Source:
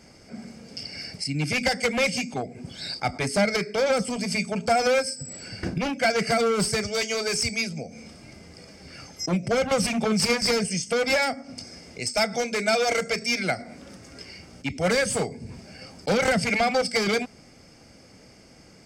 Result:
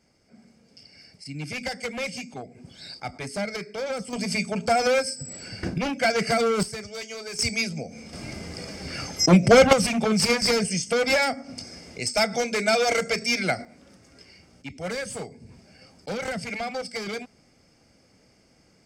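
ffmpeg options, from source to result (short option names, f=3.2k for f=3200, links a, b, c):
-af "asetnsamples=n=441:p=0,asendcmd='1.26 volume volume -7.5dB;4.13 volume volume 0dB;6.63 volume volume -9.5dB;7.39 volume volume 1dB;8.13 volume volume 9.5dB;9.73 volume volume 1dB;13.65 volume volume -8.5dB',volume=-14dB"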